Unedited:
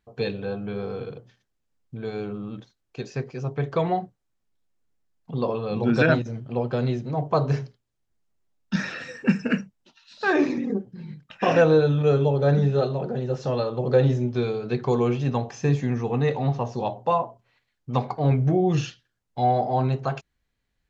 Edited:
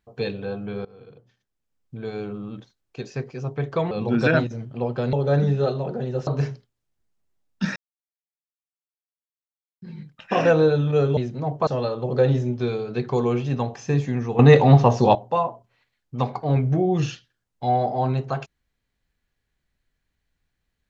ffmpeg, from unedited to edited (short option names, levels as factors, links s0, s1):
-filter_complex "[0:a]asplit=11[s0][s1][s2][s3][s4][s5][s6][s7][s8][s9][s10];[s0]atrim=end=0.85,asetpts=PTS-STARTPTS,afade=t=out:st=0.846:d=0.004:c=hsin:silence=0.0841395[s11];[s1]atrim=start=0.85:end=3.912,asetpts=PTS-STARTPTS,afade=t=in:d=1.14:silence=0.0841395[s12];[s2]atrim=start=5.658:end=6.882[s13];[s3]atrim=start=12.278:end=13.422[s14];[s4]atrim=start=7.378:end=8.87,asetpts=PTS-STARTPTS,afade=t=out:st=1.488:d=0.004:c=hsin[s15];[s5]atrim=start=8.87:end=10.93,asetpts=PTS-STARTPTS,volume=0[s16];[s6]atrim=start=10.93:end=12.282,asetpts=PTS-STARTPTS,afade=t=in:d=0.004:c=hsin[s17];[s7]atrim=start=6.878:end=7.382[s18];[s8]atrim=start=13.418:end=16.142[s19];[s9]atrim=start=16.138:end=16.902,asetpts=PTS-STARTPTS,volume=3.55[s20];[s10]atrim=start=16.898[s21];[s11][s12]concat=n=2:v=0:a=1[s22];[s22][s13]acrossfade=d=0.004:c1=hsin:c2=hsin[s23];[s23][s14]acrossfade=d=0.004:c1=hsin:c2=hsin[s24];[s15][s16][s17]concat=n=3:v=0:a=1[s25];[s24][s25]acrossfade=d=0.004:c1=hsin:c2=hsin[s26];[s26][s18]acrossfade=d=0.004:c1=hsin:c2=hsin[s27];[s27][s19]acrossfade=d=0.004:c1=hsin:c2=hsin[s28];[s28][s20]acrossfade=d=0.004:c1=hsin:c2=hsin[s29];[s29][s21]acrossfade=d=0.004:c1=hsin:c2=hsin"